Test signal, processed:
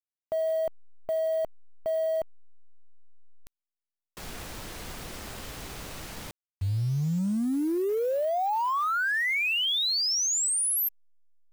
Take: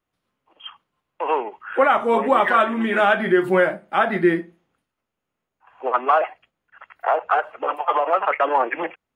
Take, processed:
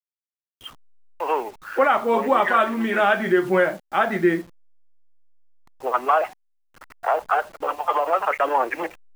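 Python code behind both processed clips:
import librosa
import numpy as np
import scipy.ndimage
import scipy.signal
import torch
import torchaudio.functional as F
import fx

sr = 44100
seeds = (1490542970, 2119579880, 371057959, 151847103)

y = fx.delta_hold(x, sr, step_db=-40.0)
y = F.gain(torch.from_numpy(y), -1.5).numpy()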